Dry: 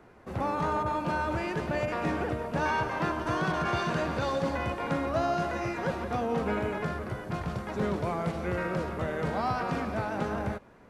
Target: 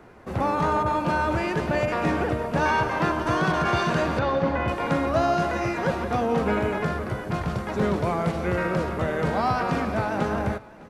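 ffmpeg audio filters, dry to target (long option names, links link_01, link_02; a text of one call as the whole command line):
ffmpeg -i in.wav -filter_complex "[0:a]asettb=1/sr,asplit=3[link_01][link_02][link_03];[link_01]atrim=end=4.194[link_04];[link_02]atrim=start=4.19:end=4.68,asetpts=PTS-STARTPTS,afade=type=in:duration=0.004:curve=qsin,afade=type=out:start_time=0.486:duration=0.004:curve=qsin,lowpass=2800[link_05];[link_03]atrim=start=4.676[link_06];[link_04][link_05]acrossfade=duration=0.004:curve1=hsin:curve2=qsin[link_07];[link_07][link_06]acrossfade=duration=0.004:curve1=qsin:curve2=hsin,aecho=1:1:608:0.075,volume=6dB" out.wav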